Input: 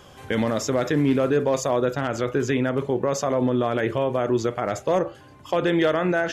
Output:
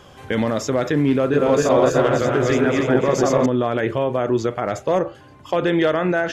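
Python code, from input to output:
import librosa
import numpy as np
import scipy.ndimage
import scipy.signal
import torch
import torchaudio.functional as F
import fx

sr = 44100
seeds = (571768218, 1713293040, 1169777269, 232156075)

y = fx.reverse_delay_fb(x, sr, ms=146, feedback_pct=66, wet_db=0, at=(1.19, 3.46))
y = fx.high_shelf(y, sr, hz=6700.0, db=-6.0)
y = y * librosa.db_to_amplitude(2.5)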